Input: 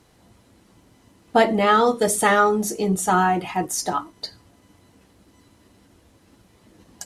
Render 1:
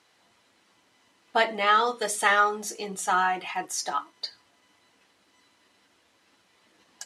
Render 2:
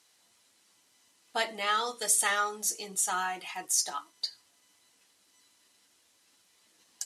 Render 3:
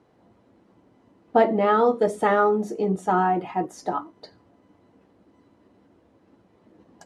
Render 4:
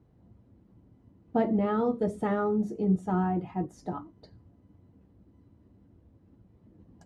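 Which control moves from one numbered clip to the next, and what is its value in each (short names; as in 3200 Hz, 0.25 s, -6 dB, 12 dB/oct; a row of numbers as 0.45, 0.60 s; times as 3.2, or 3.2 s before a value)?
band-pass, frequency: 2600, 6900, 450, 100 Hz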